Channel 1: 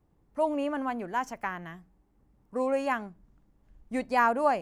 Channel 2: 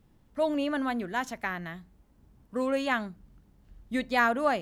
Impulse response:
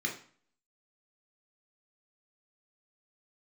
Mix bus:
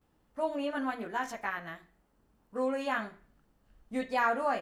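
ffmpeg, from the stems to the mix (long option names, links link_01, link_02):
-filter_complex "[0:a]volume=-6dB,asplit=2[link_01][link_02];[1:a]highpass=390,adelay=15,volume=-2.5dB,asplit=2[link_03][link_04];[link_04]volume=-12dB[link_05];[link_02]apad=whole_len=204195[link_06];[link_03][link_06]sidechaincompress=threshold=-37dB:ratio=8:attack=40:release=135[link_07];[2:a]atrim=start_sample=2205[link_08];[link_05][link_08]afir=irnorm=-1:irlink=0[link_09];[link_01][link_07][link_09]amix=inputs=3:normalize=0"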